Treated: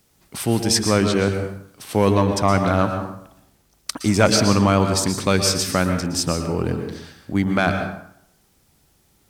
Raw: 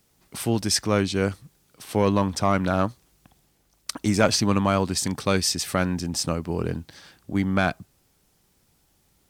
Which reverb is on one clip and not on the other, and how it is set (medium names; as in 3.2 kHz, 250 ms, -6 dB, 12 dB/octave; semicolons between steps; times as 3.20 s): plate-style reverb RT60 0.71 s, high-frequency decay 0.65×, pre-delay 105 ms, DRR 5.5 dB; trim +3.5 dB